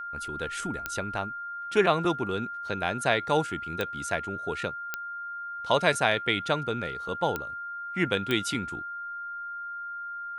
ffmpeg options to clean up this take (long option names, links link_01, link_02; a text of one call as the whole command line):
ffmpeg -i in.wav -af "adeclick=threshold=4,bandreject=frequency=1400:width=30" out.wav